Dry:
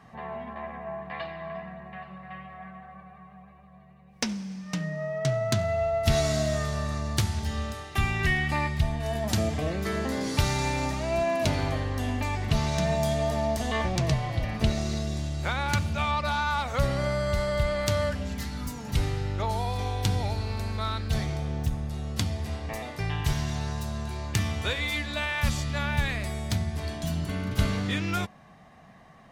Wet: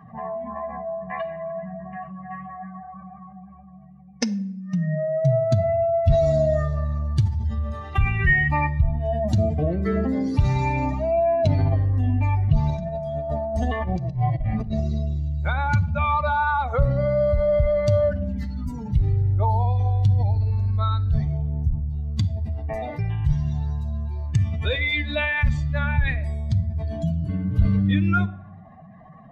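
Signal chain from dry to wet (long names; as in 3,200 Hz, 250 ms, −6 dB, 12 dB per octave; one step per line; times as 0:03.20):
expanding power law on the bin magnitudes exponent 2
0:12.69–0:14.80: compressor whose output falls as the input rises −30 dBFS, ratio −0.5
rectangular room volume 2,000 cubic metres, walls furnished, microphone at 0.53 metres
level +6.5 dB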